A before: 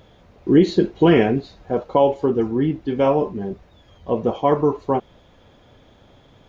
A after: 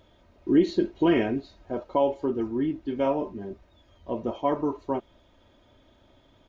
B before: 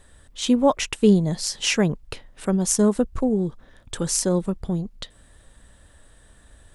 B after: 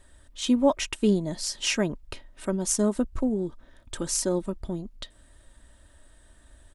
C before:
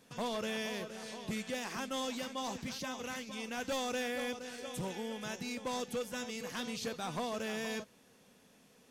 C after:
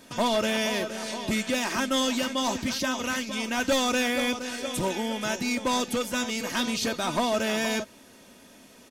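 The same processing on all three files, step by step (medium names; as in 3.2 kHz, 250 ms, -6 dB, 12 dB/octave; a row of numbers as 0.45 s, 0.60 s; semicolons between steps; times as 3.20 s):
comb 3.2 ms, depth 48%; normalise loudness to -27 LUFS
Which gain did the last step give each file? -8.5 dB, -5.0 dB, +11.5 dB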